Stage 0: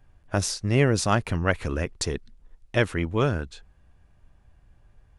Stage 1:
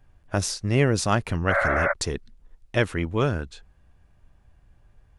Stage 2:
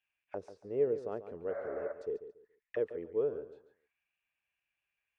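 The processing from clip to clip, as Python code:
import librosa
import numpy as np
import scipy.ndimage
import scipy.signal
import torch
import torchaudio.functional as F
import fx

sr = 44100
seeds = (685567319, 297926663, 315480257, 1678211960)

y1 = fx.spec_repair(x, sr, seeds[0], start_s=1.53, length_s=0.37, low_hz=510.0, high_hz=2400.0, source='before')
y2 = fx.auto_wah(y1, sr, base_hz=450.0, top_hz=2800.0, q=7.6, full_db=-26.0, direction='down')
y2 = fx.echo_feedback(y2, sr, ms=141, feedback_pct=25, wet_db=-12.0)
y2 = F.gain(torch.from_numpy(y2), -1.5).numpy()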